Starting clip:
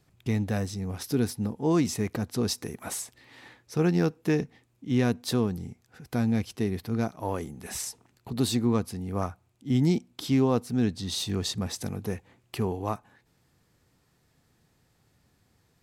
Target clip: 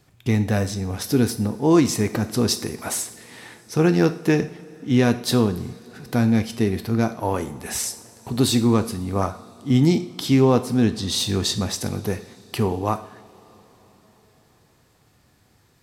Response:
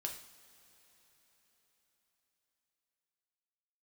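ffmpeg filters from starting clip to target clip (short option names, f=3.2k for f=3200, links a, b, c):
-filter_complex "[0:a]asplit=2[a][b];[1:a]atrim=start_sample=2205,lowshelf=f=160:g=-7[c];[b][c]afir=irnorm=-1:irlink=0,volume=1.5dB[d];[a][d]amix=inputs=2:normalize=0,volume=2.5dB"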